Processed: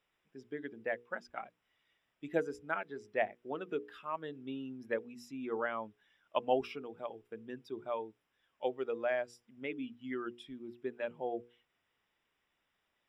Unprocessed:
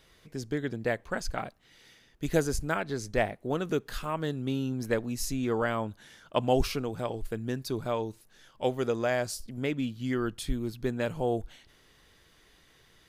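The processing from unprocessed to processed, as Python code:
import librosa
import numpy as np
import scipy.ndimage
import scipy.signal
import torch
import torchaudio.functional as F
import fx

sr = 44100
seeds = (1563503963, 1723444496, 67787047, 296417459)

y = fx.bin_expand(x, sr, power=1.5)
y = scipy.signal.sosfilt(scipy.signal.butter(2, 330.0, 'highpass', fs=sr, output='sos'), y)
y = fx.hum_notches(y, sr, base_hz=60, count=8)
y = fx.quant_dither(y, sr, seeds[0], bits=12, dither='triangular')
y = scipy.signal.savgol_filter(y, 25, 4, mode='constant')
y = y * 10.0 ** (-2.5 / 20.0)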